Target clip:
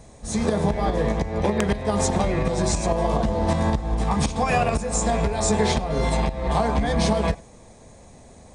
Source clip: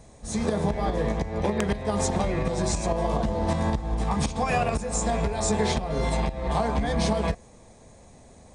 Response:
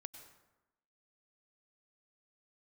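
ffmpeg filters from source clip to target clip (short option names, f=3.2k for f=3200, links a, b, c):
-filter_complex "[0:a]asplit=2[a][b];[1:a]atrim=start_sample=2205,atrim=end_sample=4410[c];[b][c]afir=irnorm=-1:irlink=0,volume=3.5dB[d];[a][d]amix=inputs=2:normalize=0,volume=-1.5dB"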